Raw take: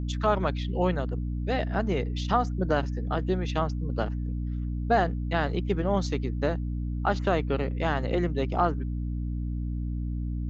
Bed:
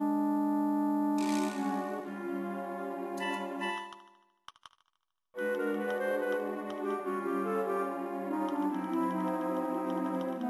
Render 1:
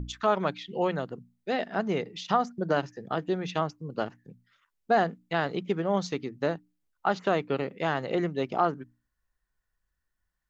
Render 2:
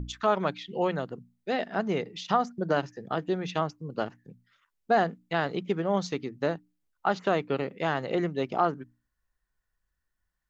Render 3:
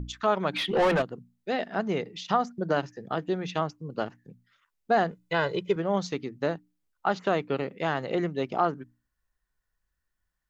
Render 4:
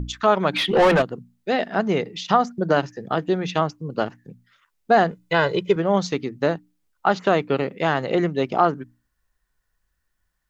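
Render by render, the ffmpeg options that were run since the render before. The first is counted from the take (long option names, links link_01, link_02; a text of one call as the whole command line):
ffmpeg -i in.wav -af "bandreject=frequency=60:width_type=h:width=6,bandreject=frequency=120:width_type=h:width=6,bandreject=frequency=180:width_type=h:width=6,bandreject=frequency=240:width_type=h:width=6,bandreject=frequency=300:width_type=h:width=6" out.wav
ffmpeg -i in.wav -af anull out.wav
ffmpeg -i in.wav -filter_complex "[0:a]asplit=3[link_01][link_02][link_03];[link_01]afade=type=out:start_time=0.53:duration=0.02[link_04];[link_02]asplit=2[link_05][link_06];[link_06]highpass=frequency=720:poles=1,volume=28dB,asoftclip=type=tanh:threshold=-15dB[link_07];[link_05][link_07]amix=inputs=2:normalize=0,lowpass=frequency=2100:poles=1,volume=-6dB,afade=type=in:start_time=0.53:duration=0.02,afade=type=out:start_time=1.01:duration=0.02[link_08];[link_03]afade=type=in:start_time=1.01:duration=0.02[link_09];[link_04][link_08][link_09]amix=inputs=3:normalize=0,asettb=1/sr,asplit=3[link_10][link_11][link_12];[link_10]atrim=end=5.114[link_13];[link_11]atrim=start=5.11:end=5.76,asetpts=PTS-STARTPTS,afade=type=in:duration=0.004:curve=qsin,afade=type=out:start_time=0.646:duration=0.004:curve=qsin,aecho=1:1:2:0.94,atrim=end_sample=28665[link_14];[link_12]atrim=start=5.756[link_15];[link_13][link_14]acrossfade=duration=0.004:curve1=hsin:curve2=qsin[link_16];[link_16][link_15]acrossfade=duration=0.004:curve1=qsin:curve2=hsin" out.wav
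ffmpeg -i in.wav -af "volume=7dB" out.wav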